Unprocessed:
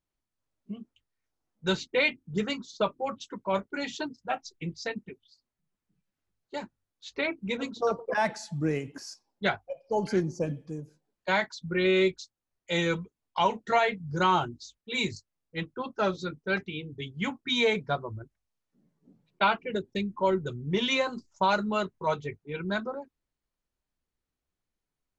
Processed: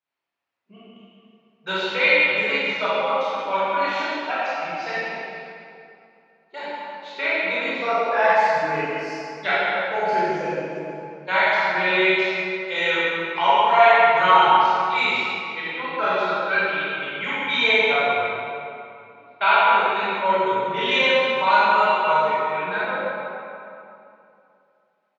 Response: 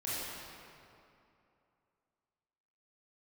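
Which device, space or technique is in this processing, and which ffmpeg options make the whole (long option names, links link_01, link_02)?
PA in a hall: -filter_complex "[0:a]asettb=1/sr,asplit=3[link_01][link_02][link_03];[link_01]atrim=end=22.234[link_04];[link_02]atrim=start=22.23:end=22.78,asetpts=PTS-STARTPTS,afade=type=in:duration=0.004:curve=qsin,afade=type=out:start_time=0.546:duration=0.004:curve=qsin,acrossover=split=2900[link_05][link_06];[link_06]acompressor=threshold=-47dB:ratio=4:attack=1:release=60[link_07];[link_05][link_07]amix=inputs=2:normalize=0[link_08];[link_03]atrim=start=22.776[link_09];[link_04][link_08]acrossfade=duration=0.004:curve1=hsin:curve2=qsin[link_10];[link_10][link_09]acrossfade=duration=0.004:curve1=qsin:curve2=hsin,highpass=180,acrossover=split=580 4000:gain=0.178 1 0.1[link_11][link_12][link_13];[link_11][link_12][link_13]amix=inputs=3:normalize=0,equalizer=frequency=2500:width_type=o:width=0.22:gain=4,aecho=1:1:135:0.355[link_14];[1:a]atrim=start_sample=2205[link_15];[link_14][link_15]afir=irnorm=-1:irlink=0,volume=7.5dB"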